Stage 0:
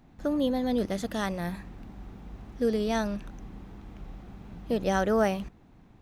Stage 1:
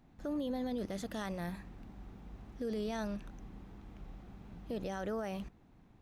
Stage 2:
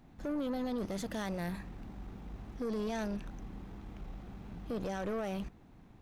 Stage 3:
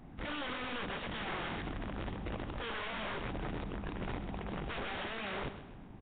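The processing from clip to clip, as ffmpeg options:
ffmpeg -i in.wav -af "alimiter=limit=-23dB:level=0:latency=1:release=20,volume=-6.5dB" out.wav
ffmpeg -i in.wav -af "aeval=exprs='(tanh(70.8*val(0)+0.3)-tanh(0.3))/70.8':channel_layout=same,volume=5.5dB" out.wav
ffmpeg -i in.wav -filter_complex "[0:a]aeval=exprs='(mod(94.4*val(0)+1,2)-1)/94.4':channel_layout=same,asplit=2[link_01][link_02];[link_02]aecho=0:1:130|260|390|520:0.251|0.111|0.0486|0.0214[link_03];[link_01][link_03]amix=inputs=2:normalize=0,volume=6dB" -ar 8000 -c:a nellymoser out.flv

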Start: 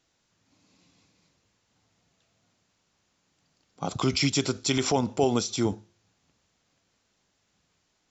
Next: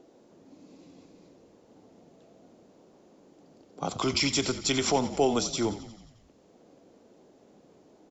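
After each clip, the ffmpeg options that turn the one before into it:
ffmpeg -i in.wav -filter_complex "[0:a]acrossover=split=250|590|2200[link_01][link_02][link_03][link_04];[link_01]asoftclip=type=tanh:threshold=-35.5dB[link_05];[link_02]acompressor=mode=upward:threshold=-36dB:ratio=2.5[link_06];[link_05][link_06][link_03][link_04]amix=inputs=4:normalize=0,asplit=8[link_07][link_08][link_09][link_10][link_11][link_12][link_13][link_14];[link_08]adelay=89,afreqshift=-39,volume=-14dB[link_15];[link_09]adelay=178,afreqshift=-78,volume=-18.2dB[link_16];[link_10]adelay=267,afreqshift=-117,volume=-22.3dB[link_17];[link_11]adelay=356,afreqshift=-156,volume=-26.5dB[link_18];[link_12]adelay=445,afreqshift=-195,volume=-30.6dB[link_19];[link_13]adelay=534,afreqshift=-234,volume=-34.8dB[link_20];[link_14]adelay=623,afreqshift=-273,volume=-38.9dB[link_21];[link_07][link_15][link_16][link_17][link_18][link_19][link_20][link_21]amix=inputs=8:normalize=0" out.wav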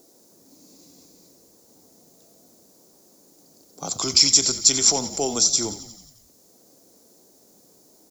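ffmpeg -i in.wav -af "acrusher=bits=11:mix=0:aa=0.000001,aexciter=amount=8.7:drive=3.9:freq=4300,volume=-2dB" out.wav

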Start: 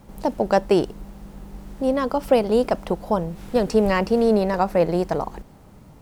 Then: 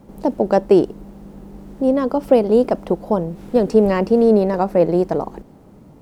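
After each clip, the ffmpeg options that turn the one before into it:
ffmpeg -i in.wav -af "equalizer=frequency=320:width_type=o:width=2.5:gain=11,volume=-4.5dB" out.wav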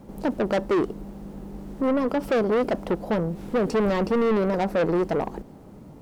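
ffmpeg -i in.wav -af "asoftclip=type=tanh:threshold=-18.5dB" out.wav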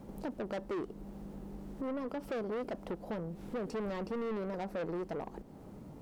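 ffmpeg -i in.wav -af "acompressor=threshold=-41dB:ratio=2,volume=-4dB" out.wav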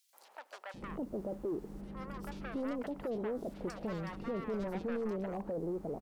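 ffmpeg -i in.wav -filter_complex "[0:a]acrossover=split=770|3200[link_01][link_02][link_03];[link_02]adelay=130[link_04];[link_01]adelay=740[link_05];[link_05][link_04][link_03]amix=inputs=3:normalize=0,volume=1dB" out.wav

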